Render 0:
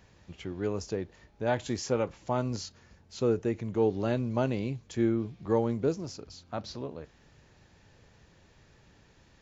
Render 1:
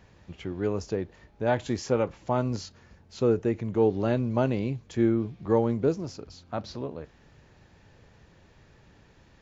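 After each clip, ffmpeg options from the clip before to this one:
-af "highshelf=f=4.1k:g=-7.5,volume=3.5dB"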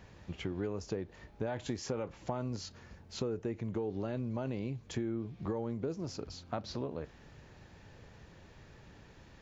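-af "alimiter=limit=-17dB:level=0:latency=1:release=25,acompressor=threshold=-34dB:ratio=6,volume=1dB"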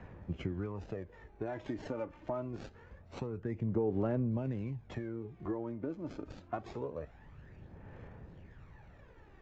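-filter_complex "[0:a]aphaser=in_gain=1:out_gain=1:delay=3.4:decay=0.57:speed=0.25:type=sinusoidal,acrossover=split=190|2700[a][b][c];[c]acrusher=samples=37:mix=1:aa=0.000001:lfo=1:lforange=22.2:lforate=0.54[d];[a][b][d]amix=inputs=3:normalize=0,volume=-2.5dB" -ar 16000 -c:a aac -b:a 48k

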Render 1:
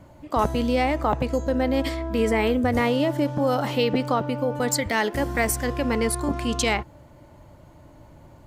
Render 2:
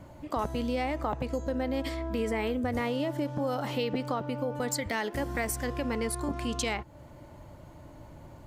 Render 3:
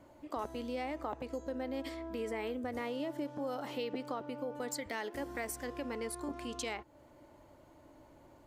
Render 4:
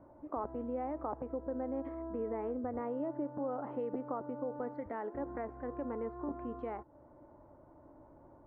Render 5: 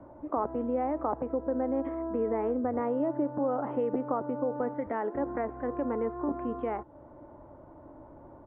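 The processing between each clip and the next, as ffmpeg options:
-af "acompressor=threshold=-34dB:ratio=2"
-af "lowshelf=f=220:t=q:w=1.5:g=-7.5,volume=-8dB"
-af "lowpass=f=1.3k:w=0.5412,lowpass=f=1.3k:w=1.3066,volume=1dB"
-filter_complex "[0:a]acrossover=split=110|800[a][b][c];[a]alimiter=level_in=33dB:limit=-24dB:level=0:latency=1,volume=-33dB[d];[d][b][c]amix=inputs=3:normalize=0,aresample=8000,aresample=44100,volume=8dB"

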